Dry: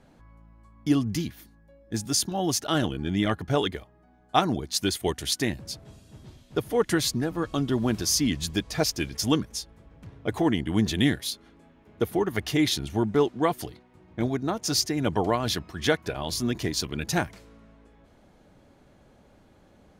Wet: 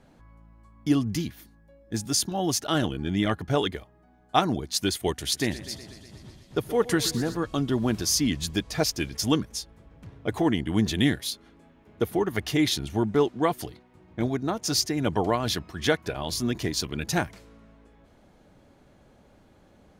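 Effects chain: 5.21–7.37 s: modulated delay 122 ms, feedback 71%, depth 81 cents, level -15.5 dB

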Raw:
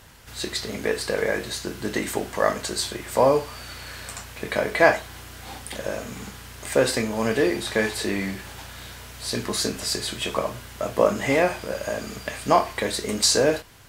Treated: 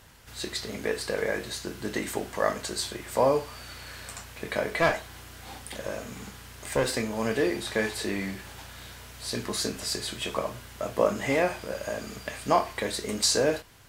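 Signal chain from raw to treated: 4.76–6.92 s: one-sided clip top -22 dBFS; trim -4.5 dB

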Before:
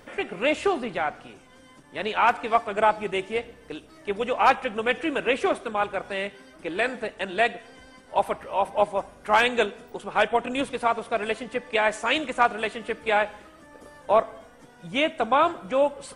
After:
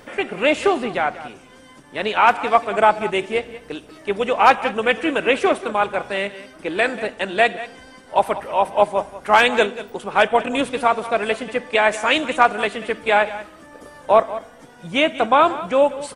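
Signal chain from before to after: bass shelf 64 Hz -6 dB; on a send: delay 188 ms -15.5 dB; on the sum: trim +6 dB

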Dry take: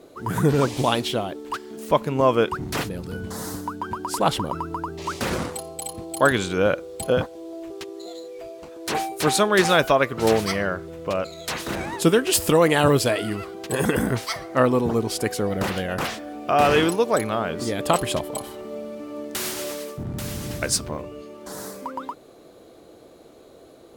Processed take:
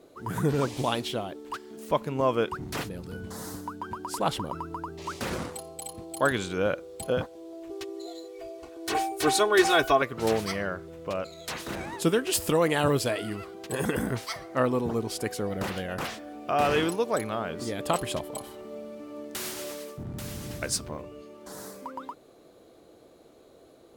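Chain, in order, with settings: 7.69–10.02 s: comb 2.7 ms, depth 92%; trim -6.5 dB

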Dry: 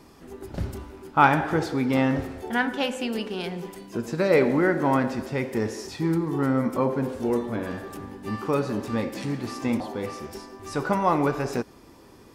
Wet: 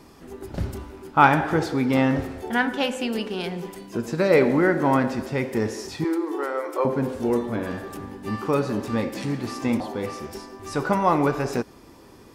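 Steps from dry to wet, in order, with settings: 6.04–6.85 s: Chebyshev high-pass 300 Hz, order 8; trim +2 dB

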